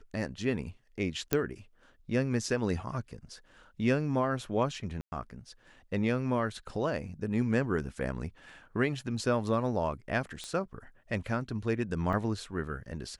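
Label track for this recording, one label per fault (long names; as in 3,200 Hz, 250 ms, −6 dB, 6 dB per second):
1.330000	1.330000	click −10 dBFS
5.010000	5.120000	drop-out 110 ms
10.440000	10.440000	click −25 dBFS
12.130000	12.130000	drop-out 3.1 ms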